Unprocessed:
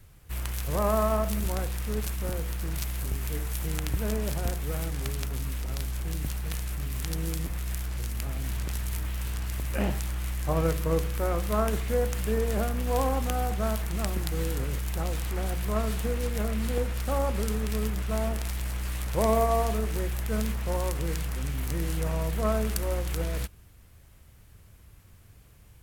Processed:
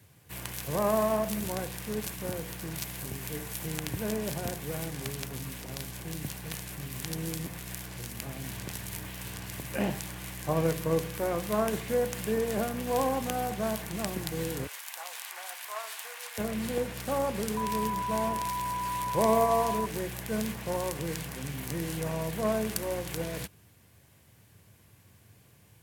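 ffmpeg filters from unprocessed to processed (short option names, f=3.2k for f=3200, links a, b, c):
-filter_complex "[0:a]asettb=1/sr,asplit=3[a][b][c];[a]atrim=end=14.674[d];[b]atrim=start=14.67:end=16.38,asetpts=PTS-STARTPTS,afade=t=in:d=0.004:c=qsin,afade=t=out:st=1.706:d=0.004:c=qsin,highpass=f=830:w=0.5412,highpass=f=830:w=1.3066[e];[c]atrim=start=16.376[f];[d][e]acrossfade=d=0.004:c1=hsin:c2=qsin[g];[g][f]acrossfade=d=0.004:c1=qsin:c2=hsin,asettb=1/sr,asplit=3[h][i][j];[h]atrim=end=17.574[k];[i]atrim=start=17.57:end=19.86,asetpts=PTS-STARTPTS,afade=t=in:d=0.004:c=qsin,afade=t=out:st=2.286:d=0.004:c=qsin,aeval=exprs='val(0)+0.0316*sin(2*PI*990*n/s)':c=same[l];[j]atrim=start=19.856[m];[k][l]acrossfade=d=0.004:c1=hsin:c2=qsin[n];[n][m]acrossfade=d=0.004:c1=qsin:c2=hsin,highpass=f=100:w=0.5412,highpass=f=100:w=1.3066,bandreject=f=1.3k:w=8.3"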